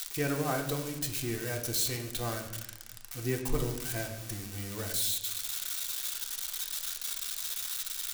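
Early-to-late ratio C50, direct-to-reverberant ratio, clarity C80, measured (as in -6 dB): 7.5 dB, 0.5 dB, 10.0 dB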